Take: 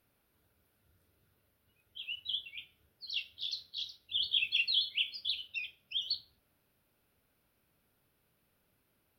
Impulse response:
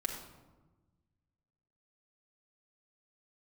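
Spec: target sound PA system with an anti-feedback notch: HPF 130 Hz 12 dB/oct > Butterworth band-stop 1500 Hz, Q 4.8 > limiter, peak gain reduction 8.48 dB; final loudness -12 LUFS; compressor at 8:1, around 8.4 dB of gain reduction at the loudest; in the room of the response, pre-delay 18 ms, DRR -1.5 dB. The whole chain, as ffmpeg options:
-filter_complex "[0:a]acompressor=threshold=-35dB:ratio=8,asplit=2[a][b];[1:a]atrim=start_sample=2205,adelay=18[c];[b][c]afir=irnorm=-1:irlink=0,volume=-1dB[d];[a][d]amix=inputs=2:normalize=0,highpass=130,asuperstop=centerf=1500:order=8:qfactor=4.8,volume=28dB,alimiter=limit=-4dB:level=0:latency=1"

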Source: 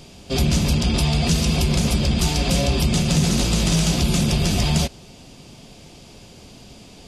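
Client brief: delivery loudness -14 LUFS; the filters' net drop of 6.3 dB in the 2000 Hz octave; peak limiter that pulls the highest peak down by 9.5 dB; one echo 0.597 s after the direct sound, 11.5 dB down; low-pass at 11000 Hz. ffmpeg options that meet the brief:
-af "lowpass=11k,equalizer=f=2k:t=o:g=-9,alimiter=limit=-18.5dB:level=0:latency=1,aecho=1:1:597:0.266,volume=12.5dB"

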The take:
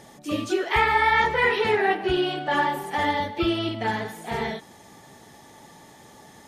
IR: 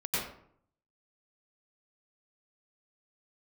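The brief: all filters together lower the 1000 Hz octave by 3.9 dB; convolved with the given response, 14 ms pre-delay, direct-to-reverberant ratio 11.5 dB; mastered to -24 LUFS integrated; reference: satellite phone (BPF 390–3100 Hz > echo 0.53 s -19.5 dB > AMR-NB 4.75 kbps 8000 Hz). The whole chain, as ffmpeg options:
-filter_complex "[0:a]equalizer=f=1k:t=o:g=-4.5,asplit=2[a][b];[1:a]atrim=start_sample=2205,adelay=14[c];[b][c]afir=irnorm=-1:irlink=0,volume=-18.5dB[d];[a][d]amix=inputs=2:normalize=0,highpass=390,lowpass=3.1k,aecho=1:1:530:0.106,volume=5.5dB" -ar 8000 -c:a libopencore_amrnb -b:a 4750

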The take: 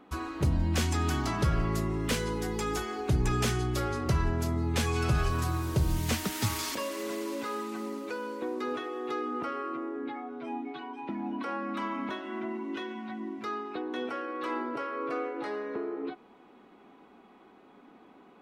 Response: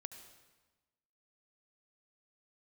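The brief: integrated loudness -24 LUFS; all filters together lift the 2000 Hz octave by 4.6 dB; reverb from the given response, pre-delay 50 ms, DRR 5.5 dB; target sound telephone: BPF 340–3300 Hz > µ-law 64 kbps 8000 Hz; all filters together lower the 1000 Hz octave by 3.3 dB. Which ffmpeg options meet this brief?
-filter_complex "[0:a]equalizer=f=1k:t=o:g=-7.5,equalizer=f=2k:t=o:g=9,asplit=2[a][b];[1:a]atrim=start_sample=2205,adelay=50[c];[b][c]afir=irnorm=-1:irlink=0,volume=-1dB[d];[a][d]amix=inputs=2:normalize=0,highpass=340,lowpass=3.3k,volume=11.5dB" -ar 8000 -c:a pcm_mulaw

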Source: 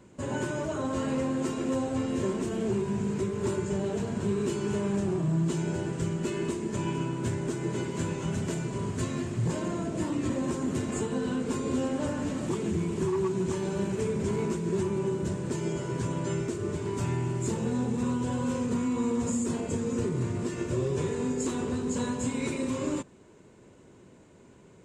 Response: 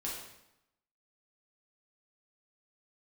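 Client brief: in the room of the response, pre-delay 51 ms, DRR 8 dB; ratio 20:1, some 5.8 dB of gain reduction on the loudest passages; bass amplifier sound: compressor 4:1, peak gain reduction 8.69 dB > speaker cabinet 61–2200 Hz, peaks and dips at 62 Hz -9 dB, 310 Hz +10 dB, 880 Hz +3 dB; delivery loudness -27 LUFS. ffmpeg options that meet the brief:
-filter_complex "[0:a]acompressor=threshold=-30dB:ratio=20,asplit=2[a][b];[1:a]atrim=start_sample=2205,adelay=51[c];[b][c]afir=irnorm=-1:irlink=0,volume=-9.5dB[d];[a][d]amix=inputs=2:normalize=0,acompressor=threshold=-38dB:ratio=4,highpass=f=61:w=0.5412,highpass=f=61:w=1.3066,equalizer=f=62:t=q:w=4:g=-9,equalizer=f=310:t=q:w=4:g=10,equalizer=f=880:t=q:w=4:g=3,lowpass=f=2.2k:w=0.5412,lowpass=f=2.2k:w=1.3066,volume=11dB"

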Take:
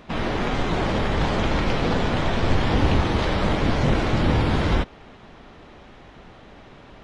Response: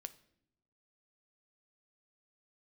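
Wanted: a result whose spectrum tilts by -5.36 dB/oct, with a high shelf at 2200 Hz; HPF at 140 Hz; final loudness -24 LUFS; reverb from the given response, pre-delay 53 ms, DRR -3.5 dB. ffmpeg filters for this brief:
-filter_complex "[0:a]highpass=140,highshelf=f=2.2k:g=-7,asplit=2[a][b];[1:a]atrim=start_sample=2205,adelay=53[c];[b][c]afir=irnorm=-1:irlink=0,volume=8dB[d];[a][d]amix=inputs=2:normalize=0,volume=-4dB"

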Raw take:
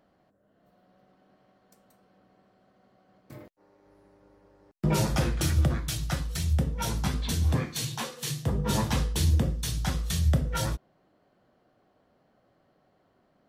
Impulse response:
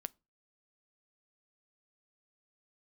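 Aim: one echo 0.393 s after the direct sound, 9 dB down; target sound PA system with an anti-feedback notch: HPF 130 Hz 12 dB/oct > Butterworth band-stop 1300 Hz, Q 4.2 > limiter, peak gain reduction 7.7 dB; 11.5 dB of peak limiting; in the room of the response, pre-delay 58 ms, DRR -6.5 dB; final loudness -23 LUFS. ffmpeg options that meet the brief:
-filter_complex "[0:a]alimiter=level_in=1dB:limit=-24dB:level=0:latency=1,volume=-1dB,aecho=1:1:393:0.355,asplit=2[a][b];[1:a]atrim=start_sample=2205,adelay=58[c];[b][c]afir=irnorm=-1:irlink=0,volume=9.5dB[d];[a][d]amix=inputs=2:normalize=0,highpass=130,asuperstop=centerf=1300:order=8:qfactor=4.2,volume=10dB,alimiter=limit=-13.5dB:level=0:latency=1"

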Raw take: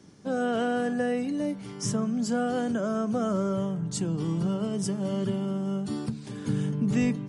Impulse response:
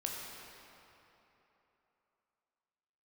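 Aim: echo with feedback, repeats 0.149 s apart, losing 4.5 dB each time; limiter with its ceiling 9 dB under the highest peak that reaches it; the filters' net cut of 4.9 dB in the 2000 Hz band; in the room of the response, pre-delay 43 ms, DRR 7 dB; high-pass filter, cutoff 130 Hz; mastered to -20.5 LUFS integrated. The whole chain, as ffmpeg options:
-filter_complex "[0:a]highpass=130,equalizer=f=2k:t=o:g=-7.5,alimiter=level_in=2dB:limit=-24dB:level=0:latency=1,volume=-2dB,aecho=1:1:149|298|447|596|745|894|1043|1192|1341:0.596|0.357|0.214|0.129|0.0772|0.0463|0.0278|0.0167|0.01,asplit=2[a][b];[1:a]atrim=start_sample=2205,adelay=43[c];[b][c]afir=irnorm=-1:irlink=0,volume=-9dB[d];[a][d]amix=inputs=2:normalize=0,volume=11dB"

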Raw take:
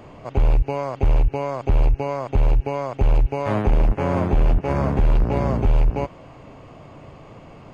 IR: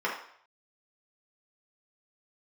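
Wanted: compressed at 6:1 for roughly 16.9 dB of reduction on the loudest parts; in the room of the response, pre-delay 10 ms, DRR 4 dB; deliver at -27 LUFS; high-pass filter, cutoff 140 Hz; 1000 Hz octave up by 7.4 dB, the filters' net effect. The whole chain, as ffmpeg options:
-filter_complex "[0:a]highpass=140,equalizer=f=1k:t=o:g=9,acompressor=threshold=-34dB:ratio=6,asplit=2[a][b];[1:a]atrim=start_sample=2205,adelay=10[c];[b][c]afir=irnorm=-1:irlink=0,volume=-14.5dB[d];[a][d]amix=inputs=2:normalize=0,volume=9.5dB"

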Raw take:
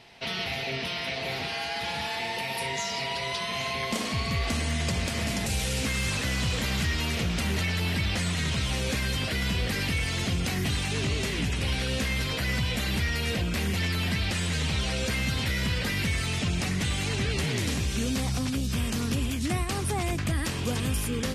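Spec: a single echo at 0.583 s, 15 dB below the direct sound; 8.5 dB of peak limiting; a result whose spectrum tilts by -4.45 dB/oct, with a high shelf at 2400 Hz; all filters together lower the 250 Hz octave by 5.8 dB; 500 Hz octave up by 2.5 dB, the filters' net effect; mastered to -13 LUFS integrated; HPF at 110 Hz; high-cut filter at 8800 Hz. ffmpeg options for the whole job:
-af "highpass=110,lowpass=8.8k,equalizer=f=250:t=o:g=-9,equalizer=f=500:t=o:g=6,highshelf=f=2.4k:g=-7,alimiter=level_in=1.5dB:limit=-24dB:level=0:latency=1,volume=-1.5dB,aecho=1:1:583:0.178,volume=21dB"

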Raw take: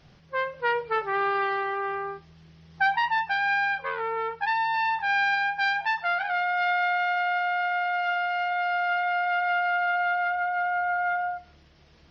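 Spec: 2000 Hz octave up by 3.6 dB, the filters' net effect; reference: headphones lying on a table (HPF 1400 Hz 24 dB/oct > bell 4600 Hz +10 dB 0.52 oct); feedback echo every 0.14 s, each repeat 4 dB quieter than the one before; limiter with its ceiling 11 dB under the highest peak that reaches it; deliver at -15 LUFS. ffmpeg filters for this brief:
-af "equalizer=f=2k:t=o:g=6,alimiter=limit=-21.5dB:level=0:latency=1,highpass=f=1.4k:w=0.5412,highpass=f=1.4k:w=1.3066,equalizer=f=4.6k:t=o:w=0.52:g=10,aecho=1:1:140|280|420|560|700|840|980|1120|1260:0.631|0.398|0.25|0.158|0.0994|0.0626|0.0394|0.0249|0.0157,volume=13.5dB"

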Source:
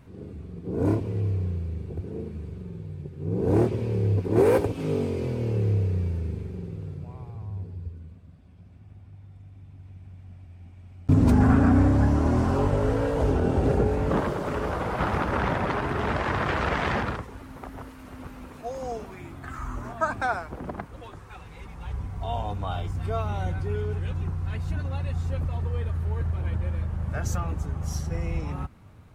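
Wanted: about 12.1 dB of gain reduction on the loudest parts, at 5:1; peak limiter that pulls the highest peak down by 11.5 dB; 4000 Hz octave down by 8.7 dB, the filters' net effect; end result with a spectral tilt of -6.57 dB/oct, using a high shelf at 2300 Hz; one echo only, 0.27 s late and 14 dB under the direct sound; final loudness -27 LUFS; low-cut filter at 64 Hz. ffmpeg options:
-af "highpass=64,highshelf=f=2.3k:g=-8,equalizer=f=4k:t=o:g=-4.5,acompressor=threshold=-29dB:ratio=5,alimiter=level_in=5dB:limit=-24dB:level=0:latency=1,volume=-5dB,aecho=1:1:270:0.2,volume=11dB"

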